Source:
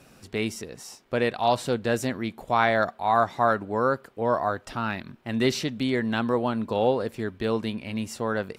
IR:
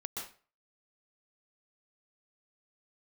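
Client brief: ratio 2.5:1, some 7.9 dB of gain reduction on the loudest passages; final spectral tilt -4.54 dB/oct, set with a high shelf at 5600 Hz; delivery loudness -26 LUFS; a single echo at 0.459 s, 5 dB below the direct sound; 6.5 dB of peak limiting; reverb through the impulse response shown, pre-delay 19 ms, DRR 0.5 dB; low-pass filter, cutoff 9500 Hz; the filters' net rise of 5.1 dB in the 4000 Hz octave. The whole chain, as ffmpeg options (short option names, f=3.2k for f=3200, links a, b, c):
-filter_complex "[0:a]lowpass=9.5k,equalizer=f=4k:t=o:g=4,highshelf=f=5.6k:g=6.5,acompressor=threshold=-28dB:ratio=2.5,alimiter=limit=-20.5dB:level=0:latency=1,aecho=1:1:459:0.562,asplit=2[a][b];[1:a]atrim=start_sample=2205,adelay=19[c];[b][c]afir=irnorm=-1:irlink=0,volume=-1dB[d];[a][d]amix=inputs=2:normalize=0,volume=3dB"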